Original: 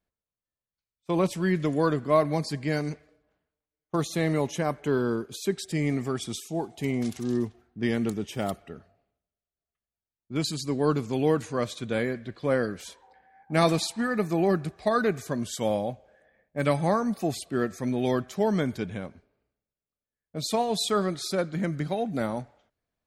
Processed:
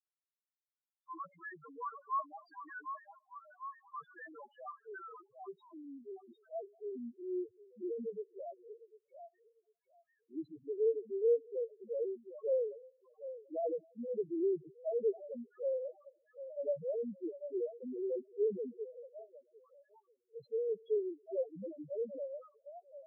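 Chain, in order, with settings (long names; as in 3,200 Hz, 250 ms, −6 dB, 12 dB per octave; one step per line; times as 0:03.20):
echo through a band-pass that steps 750 ms, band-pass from 830 Hz, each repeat 0.7 octaves, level −6.5 dB
band-pass filter sweep 1,300 Hz → 460 Hz, 0:05.02–0:07.09
spectral peaks only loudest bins 1
level +1 dB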